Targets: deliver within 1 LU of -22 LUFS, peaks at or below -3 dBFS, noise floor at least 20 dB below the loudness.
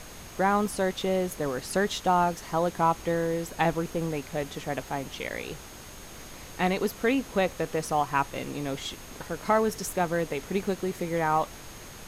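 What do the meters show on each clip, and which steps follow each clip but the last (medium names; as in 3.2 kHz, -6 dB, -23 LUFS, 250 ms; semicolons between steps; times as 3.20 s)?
steady tone 6.5 kHz; tone level -53 dBFS; noise floor -45 dBFS; noise floor target -49 dBFS; loudness -28.5 LUFS; peak level -10.5 dBFS; loudness target -22.0 LUFS
-> band-stop 6.5 kHz, Q 30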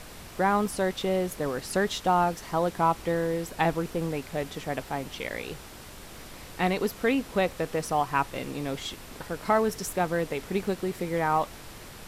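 steady tone not found; noise floor -45 dBFS; noise floor target -49 dBFS
-> noise print and reduce 6 dB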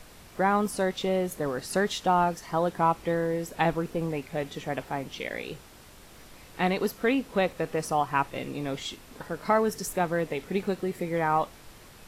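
noise floor -51 dBFS; loudness -28.5 LUFS; peak level -10.5 dBFS; loudness target -22.0 LUFS
-> trim +6.5 dB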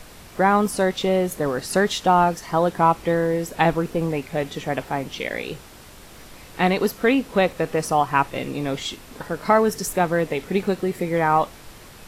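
loudness -22.0 LUFS; peak level -4.0 dBFS; noise floor -44 dBFS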